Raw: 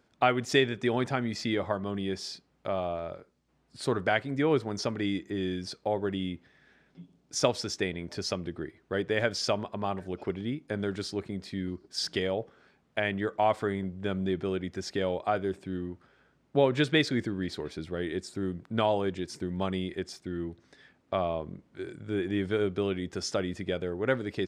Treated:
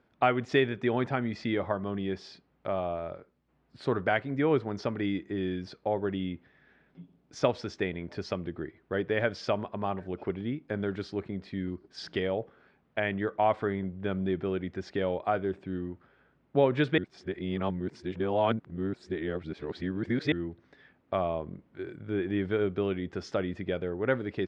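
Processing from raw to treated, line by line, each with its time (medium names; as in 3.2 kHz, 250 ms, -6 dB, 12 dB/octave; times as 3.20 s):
16.98–20.32 s: reverse
whole clip: low-pass 2.8 kHz 12 dB/octave; de-esser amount 80%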